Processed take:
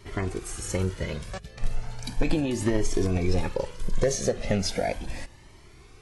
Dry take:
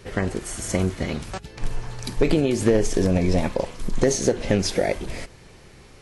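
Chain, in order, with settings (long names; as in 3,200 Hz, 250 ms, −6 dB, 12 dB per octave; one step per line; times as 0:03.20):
flanger whose copies keep moving one way rising 0.36 Hz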